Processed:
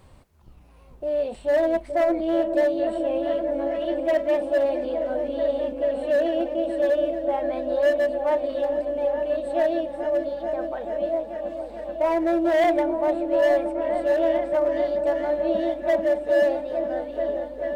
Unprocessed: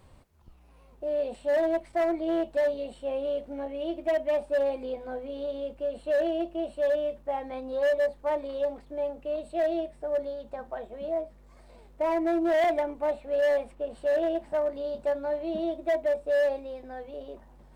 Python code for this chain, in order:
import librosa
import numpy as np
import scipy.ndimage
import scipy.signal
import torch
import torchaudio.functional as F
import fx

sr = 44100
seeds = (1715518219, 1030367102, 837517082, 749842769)

y = fx.echo_opening(x, sr, ms=435, hz=400, octaves=1, feedback_pct=70, wet_db=-3)
y = y * 10.0 ** (4.0 / 20.0)